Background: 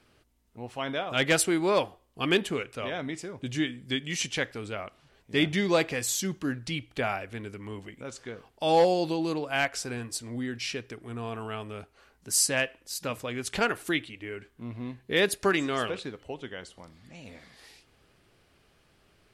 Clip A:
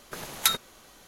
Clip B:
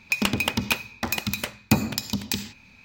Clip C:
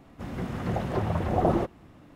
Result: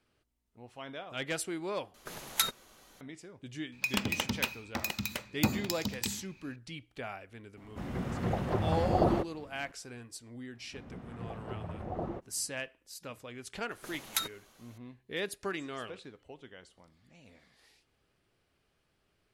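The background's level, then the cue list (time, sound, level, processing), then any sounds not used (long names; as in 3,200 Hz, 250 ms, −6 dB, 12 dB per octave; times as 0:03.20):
background −11.5 dB
0:01.94: overwrite with A −5.5 dB
0:03.72: mix in B −8 dB
0:07.57: mix in C −3 dB
0:10.54: mix in C −13.5 dB + low-pass filter 2,400 Hz 6 dB per octave
0:13.71: mix in A −9 dB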